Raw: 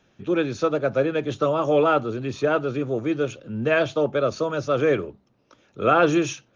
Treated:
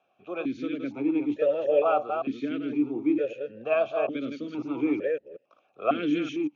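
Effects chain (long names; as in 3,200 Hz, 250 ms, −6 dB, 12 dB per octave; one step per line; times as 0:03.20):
delay that plays each chunk backwards 185 ms, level −5.5 dB
formant filter that steps through the vowels 2.2 Hz
level +4.5 dB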